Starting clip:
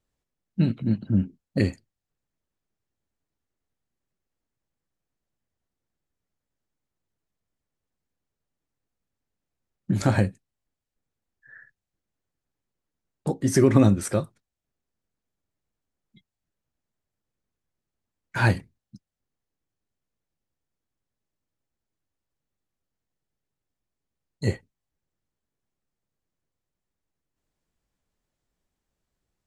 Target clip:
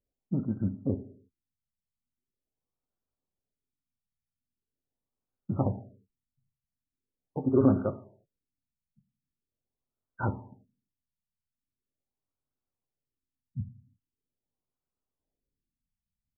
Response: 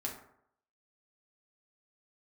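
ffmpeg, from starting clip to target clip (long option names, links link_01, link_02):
-filter_complex "[0:a]bass=frequency=250:gain=-3,treble=frequency=4000:gain=13,atempo=1.8,asplit=2[link_01][link_02];[1:a]atrim=start_sample=2205,afade=type=out:start_time=0.4:duration=0.01,atrim=end_sample=18081[link_03];[link_02][link_03]afir=irnorm=-1:irlink=0,volume=-5.5dB[link_04];[link_01][link_04]amix=inputs=2:normalize=0,afftfilt=real='re*lt(b*sr/1024,230*pow(1600/230,0.5+0.5*sin(2*PI*0.42*pts/sr)))':imag='im*lt(b*sr/1024,230*pow(1600/230,0.5+0.5*sin(2*PI*0.42*pts/sr)))':win_size=1024:overlap=0.75,volume=-7dB"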